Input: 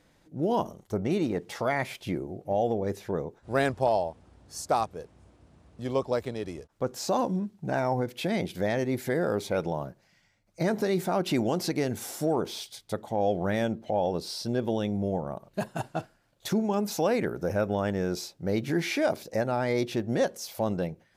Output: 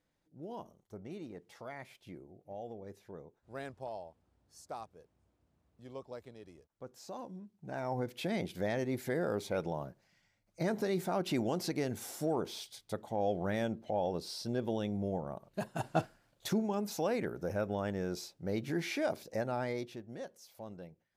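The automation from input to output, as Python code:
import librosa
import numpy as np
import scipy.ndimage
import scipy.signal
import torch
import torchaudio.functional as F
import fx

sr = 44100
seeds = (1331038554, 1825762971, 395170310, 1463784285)

y = fx.gain(x, sr, db=fx.line((7.45, -18.0), (8.03, -6.5), (15.72, -6.5), (15.99, 2.0), (16.74, -7.5), (19.63, -7.5), (20.05, -18.5)))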